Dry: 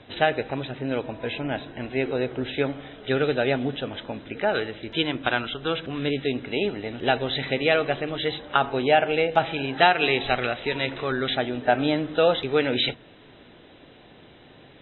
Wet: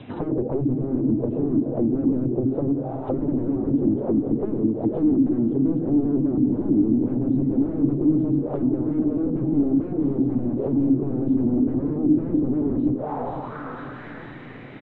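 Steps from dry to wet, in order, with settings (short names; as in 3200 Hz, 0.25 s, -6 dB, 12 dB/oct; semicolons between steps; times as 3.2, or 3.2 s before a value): rattling part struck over -32 dBFS, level -20 dBFS; 2.25–3.14 fixed phaser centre 340 Hz, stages 8; hard clip -17 dBFS, distortion -11 dB; graphic EQ 125/250/1000/2000 Hz +10/+11/+4/-8 dB; feedback echo 0.493 s, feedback 58%, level -20 dB; wavefolder -21 dBFS; diffused feedback echo 0.55 s, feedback 50%, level -10 dB; envelope low-pass 300–3400 Hz down, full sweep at -23 dBFS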